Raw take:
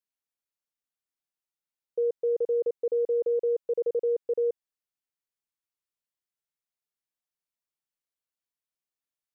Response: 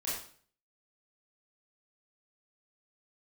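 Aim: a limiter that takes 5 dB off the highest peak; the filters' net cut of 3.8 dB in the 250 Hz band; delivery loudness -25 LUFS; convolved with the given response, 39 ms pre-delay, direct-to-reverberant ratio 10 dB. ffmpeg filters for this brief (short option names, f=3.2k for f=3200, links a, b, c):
-filter_complex "[0:a]equalizer=f=250:t=o:g=-8.5,alimiter=level_in=4.5dB:limit=-24dB:level=0:latency=1,volume=-4.5dB,asplit=2[a][b];[1:a]atrim=start_sample=2205,adelay=39[c];[b][c]afir=irnorm=-1:irlink=0,volume=-13.5dB[d];[a][d]amix=inputs=2:normalize=0,volume=10.5dB"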